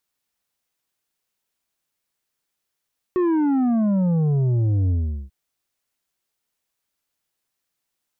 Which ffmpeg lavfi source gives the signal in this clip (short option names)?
-f lavfi -i "aevalsrc='0.133*clip((2.14-t)/0.4,0,1)*tanh(2.24*sin(2*PI*370*2.14/log(65/370)*(exp(log(65/370)*t/2.14)-1)))/tanh(2.24)':d=2.14:s=44100"